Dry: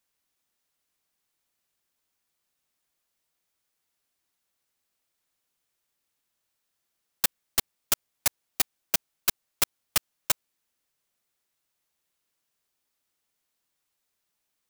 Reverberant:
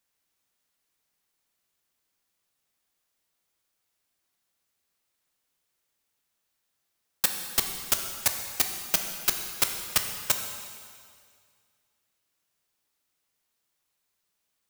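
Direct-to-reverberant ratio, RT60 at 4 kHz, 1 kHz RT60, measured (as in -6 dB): 4.0 dB, 2.0 s, 2.1 s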